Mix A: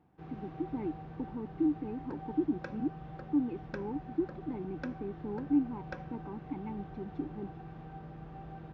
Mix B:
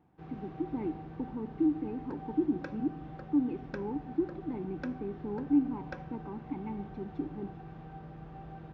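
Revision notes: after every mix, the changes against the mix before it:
reverb: on, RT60 1.0 s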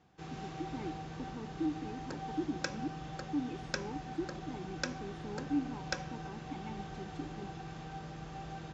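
speech −8.5 dB
master: remove head-to-tape spacing loss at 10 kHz 43 dB

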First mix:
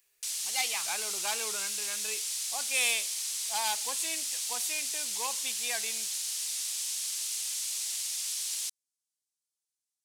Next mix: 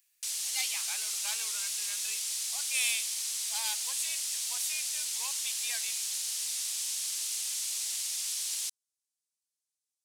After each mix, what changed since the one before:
speech: add guitar amp tone stack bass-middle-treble 10-0-10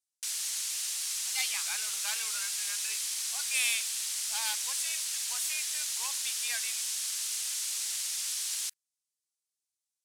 speech: entry +0.80 s
master: add parametric band 1,500 Hz +6 dB 0.93 octaves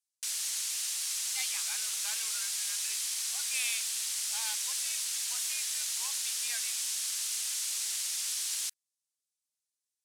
speech −5.0 dB

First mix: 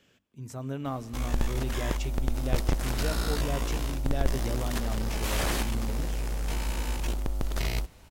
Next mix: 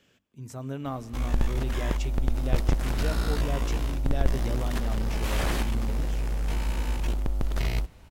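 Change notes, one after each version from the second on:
background: add bass and treble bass +3 dB, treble −5 dB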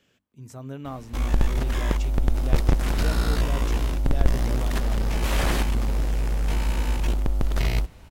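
background +4.0 dB
reverb: off

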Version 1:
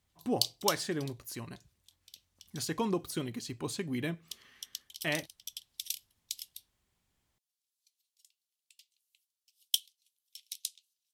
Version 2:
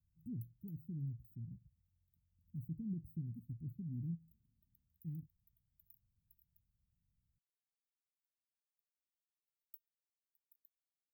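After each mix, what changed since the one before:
master: add inverse Chebyshev band-stop filter 580–9,800 Hz, stop band 60 dB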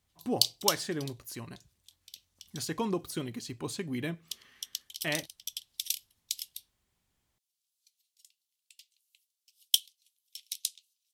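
background +4.5 dB
master: remove inverse Chebyshev band-stop filter 580–9,800 Hz, stop band 60 dB

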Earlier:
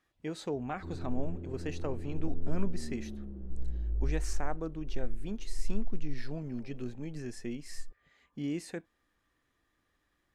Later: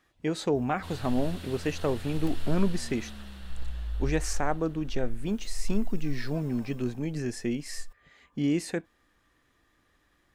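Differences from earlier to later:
speech +8.5 dB
background: remove low-pass with resonance 350 Hz, resonance Q 3.8

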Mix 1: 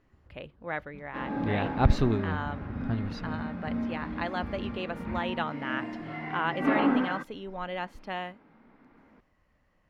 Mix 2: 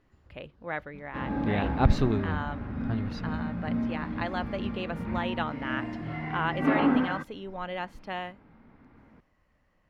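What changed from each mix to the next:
first sound: add high-shelf EQ 2,900 Hz +11 dB
second sound: remove high-pass filter 210 Hz 12 dB per octave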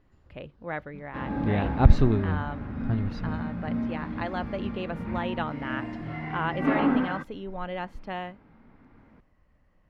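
speech: add spectral tilt −1.5 dB per octave

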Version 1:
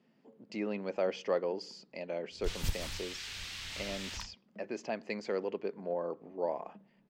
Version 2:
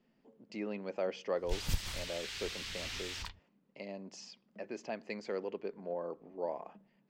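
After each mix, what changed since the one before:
speech −3.5 dB
background: entry −0.95 s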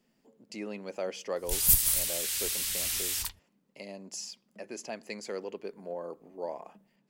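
master: remove high-frequency loss of the air 190 metres

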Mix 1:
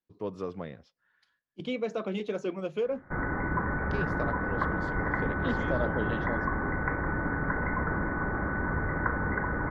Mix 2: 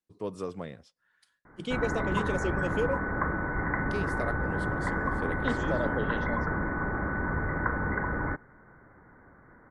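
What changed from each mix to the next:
speech: remove moving average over 5 samples
background: entry −1.40 s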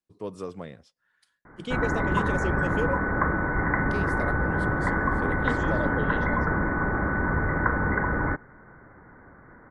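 background +5.0 dB

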